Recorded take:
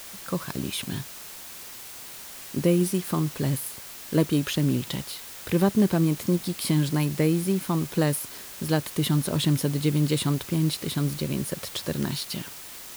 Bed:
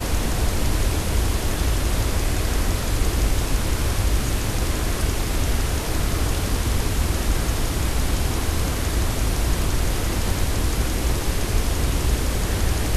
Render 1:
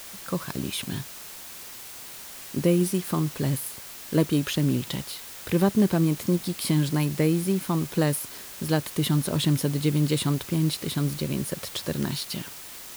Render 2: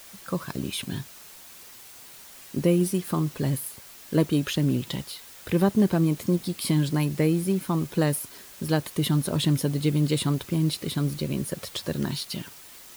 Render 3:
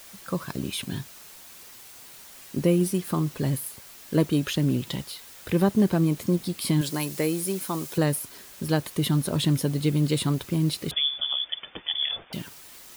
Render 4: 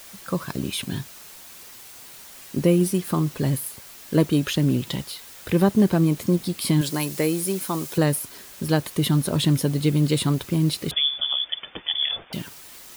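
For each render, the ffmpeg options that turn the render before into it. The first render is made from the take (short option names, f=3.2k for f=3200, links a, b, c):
-af anull
-af "afftdn=nr=6:nf=-42"
-filter_complex "[0:a]asettb=1/sr,asplit=3[a][b][c];[a]atrim=end=6.814[d];[b]atrim=start=6.81:end=7.98,asetpts=PTS-STARTPTS,afade=t=in:d=0.004:c=qsin,afade=t=out:st=1.166:d=0.004:c=qsin,bass=f=250:g=-10,treble=f=4k:g=7[e];[c]atrim=start=7.976[f];[d][e]acrossfade=d=0.004:c1=hsin:c2=qsin[g];[g][f]acrossfade=d=0.004:c1=qsin:c2=hsin,asettb=1/sr,asplit=3[h][i][j];[h]atrim=end=10.914[k];[i]atrim=start=10.91:end=12.33,asetpts=PTS-STARTPTS,afade=t=in:d=0.004:c=qsin,afade=t=out:st=1.416:d=0.004:c=qsin,lowpass=f=3.1k:t=q:w=0.5098,lowpass=f=3.1k:t=q:w=0.6013,lowpass=f=3.1k:t=q:w=0.9,lowpass=f=3.1k:t=q:w=2.563,afreqshift=-3600[l];[j]atrim=start=12.326[m];[k][l]acrossfade=d=0.004:c1=hsin:c2=qsin[n];[n][m]acrossfade=d=0.004:c1=qsin:c2=hsin"
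-af "volume=3dB"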